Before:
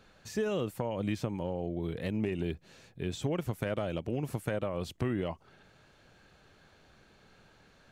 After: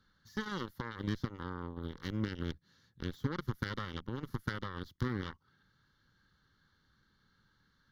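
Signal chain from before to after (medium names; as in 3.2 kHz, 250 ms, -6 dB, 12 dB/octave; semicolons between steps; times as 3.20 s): peaking EQ 410 Hz -6.5 dB 0.66 oct; Chebyshev shaper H 3 -32 dB, 7 -15 dB, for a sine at -20 dBFS; static phaser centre 2.5 kHz, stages 6; trim +1.5 dB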